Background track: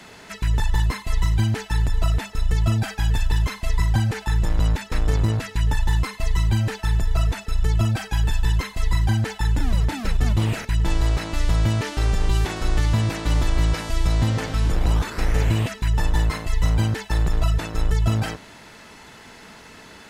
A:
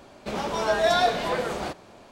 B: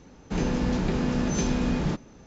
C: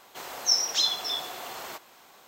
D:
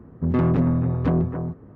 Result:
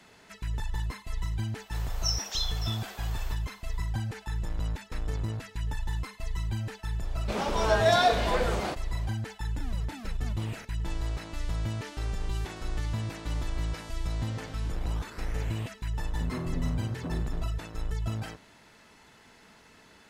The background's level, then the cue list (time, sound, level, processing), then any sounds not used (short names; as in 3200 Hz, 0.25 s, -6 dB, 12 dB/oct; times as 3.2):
background track -12 dB
1.57 add C -7.5 dB
7.02 add A -1 dB
15.98 add D -15 dB
not used: B